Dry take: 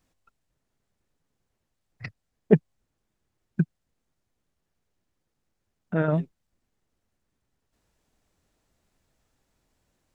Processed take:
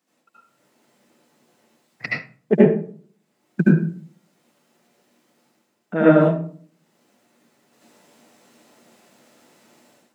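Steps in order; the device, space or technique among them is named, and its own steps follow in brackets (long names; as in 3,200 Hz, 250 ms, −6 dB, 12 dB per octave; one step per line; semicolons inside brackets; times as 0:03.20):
far laptop microphone (convolution reverb RT60 0.45 s, pre-delay 69 ms, DRR −8 dB; high-pass filter 200 Hz 24 dB per octave; automatic gain control gain up to 13.5 dB)
level −1 dB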